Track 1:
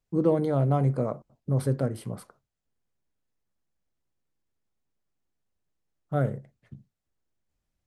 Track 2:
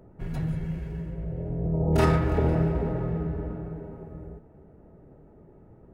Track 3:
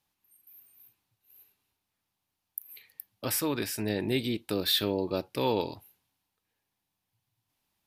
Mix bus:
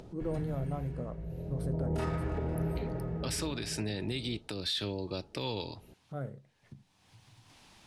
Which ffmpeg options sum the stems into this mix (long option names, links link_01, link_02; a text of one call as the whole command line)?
ffmpeg -i stem1.wav -i stem2.wav -i stem3.wav -filter_complex "[0:a]acontrast=53,volume=-19dB[link_01];[1:a]volume=-7.5dB[link_02];[2:a]lowpass=7600,acrossover=split=130|3000[link_03][link_04][link_05];[link_04]acompressor=threshold=-37dB:ratio=6[link_06];[link_03][link_06][link_05]amix=inputs=3:normalize=0,volume=2.5dB[link_07];[link_02][link_07]amix=inputs=2:normalize=0,lowpass=frequency=11000:width=0.5412,lowpass=frequency=11000:width=1.3066,alimiter=limit=-24dB:level=0:latency=1:release=129,volume=0dB[link_08];[link_01][link_08]amix=inputs=2:normalize=0,acompressor=mode=upward:threshold=-41dB:ratio=2.5" out.wav